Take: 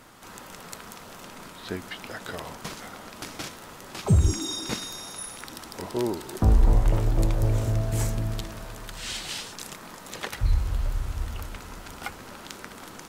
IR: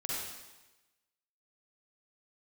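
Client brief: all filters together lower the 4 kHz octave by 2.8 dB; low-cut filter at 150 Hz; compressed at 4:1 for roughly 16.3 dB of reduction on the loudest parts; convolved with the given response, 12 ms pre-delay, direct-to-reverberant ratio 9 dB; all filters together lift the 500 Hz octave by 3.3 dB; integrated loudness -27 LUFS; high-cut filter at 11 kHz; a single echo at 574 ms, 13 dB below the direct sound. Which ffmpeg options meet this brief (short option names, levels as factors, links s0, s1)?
-filter_complex "[0:a]highpass=150,lowpass=11000,equalizer=f=500:t=o:g=4.5,equalizer=f=4000:t=o:g=-3.5,acompressor=threshold=0.0126:ratio=4,aecho=1:1:574:0.224,asplit=2[s0][s1];[1:a]atrim=start_sample=2205,adelay=12[s2];[s1][s2]afir=irnorm=-1:irlink=0,volume=0.237[s3];[s0][s3]amix=inputs=2:normalize=0,volume=4.73"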